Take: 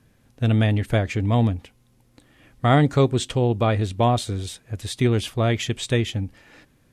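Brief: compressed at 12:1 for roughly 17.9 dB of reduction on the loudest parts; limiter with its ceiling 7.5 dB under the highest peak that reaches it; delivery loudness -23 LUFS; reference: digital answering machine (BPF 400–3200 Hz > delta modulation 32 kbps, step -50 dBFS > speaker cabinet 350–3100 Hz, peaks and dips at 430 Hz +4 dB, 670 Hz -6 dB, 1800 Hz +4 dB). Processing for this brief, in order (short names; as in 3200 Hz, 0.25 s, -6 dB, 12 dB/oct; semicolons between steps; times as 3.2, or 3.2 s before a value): compressor 12:1, threshold -31 dBFS; limiter -29 dBFS; BPF 400–3200 Hz; delta modulation 32 kbps, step -50 dBFS; speaker cabinet 350–3100 Hz, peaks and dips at 430 Hz +4 dB, 670 Hz -6 dB, 1800 Hz +4 dB; gain +24 dB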